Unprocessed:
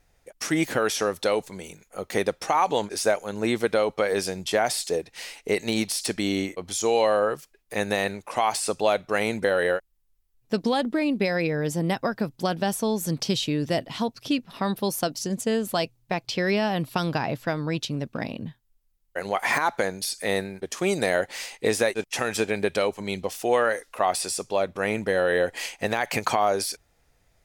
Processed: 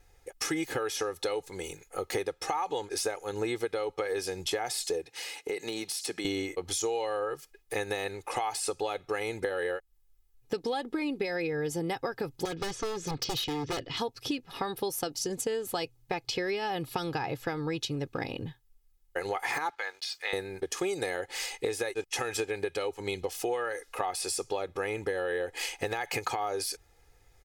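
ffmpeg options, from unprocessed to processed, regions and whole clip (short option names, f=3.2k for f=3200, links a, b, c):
-filter_complex "[0:a]asettb=1/sr,asplit=3[a][b][c];[a]atrim=end=5.074[d];[b]atrim=start=5.07:end=6.25,asetpts=PTS-STARTPTS,afade=t=in:d=0.004:c=qsin,afade=t=out:st=1.176:d=0.004:c=qsin,highpass=f=130:w=0.5412,highpass=f=130:w=1.3066,acompressor=threshold=-38dB:ratio=2:attack=3.2:release=140:knee=1:detection=peak[e];[c]atrim=start=6.246[f];[d][e]acrossfade=d=0.004:c1=hsin:c2=qsin[g];[g][f]acrossfade=d=0.004:c1=qsin:c2=hsin,asettb=1/sr,asplit=3[h][i][j];[h]atrim=end=12.454[k];[i]atrim=start=12.45:end=13.97,asetpts=PTS-STARTPTS,afade=t=in:d=0.004:c=qsin,afade=t=out:st=1.516:d=0.004:c=qsin,lowpass=f=5.9k:w=0.5412,lowpass=f=5.9k:w=1.3066,equalizer=f=810:t=o:w=0.27:g=-14,aeval=exprs='0.0631*(abs(mod(val(0)/0.0631+3,4)-2)-1)':c=same[l];[j]atrim=start=13.966[m];[k][l]acrossfade=d=0.004:c1=hsin:c2=qsin[n];[n][m]acrossfade=d=0.004:c1=qsin:c2=hsin,asettb=1/sr,asplit=3[o][p][q];[o]atrim=end=19.704[r];[p]atrim=start=19.7:end=20.33,asetpts=PTS-STARTPTS,afade=t=in:d=0.004:c=qsin,afade=t=out:st=0.626:d=0.004:c=qsin,asuperpass=centerf=2000:order=4:qfactor=0.63,aeval=exprs='sgn(val(0))*max(abs(val(0))-0.00133,0)':c=same[s];[q]atrim=start=20.326[t];[r][s]acrossfade=d=0.004:c1=hsin:c2=qsin[u];[u][t]acrossfade=d=0.004:c1=qsin:c2=hsin,aecho=1:1:2.4:0.72,acompressor=threshold=-29dB:ratio=6"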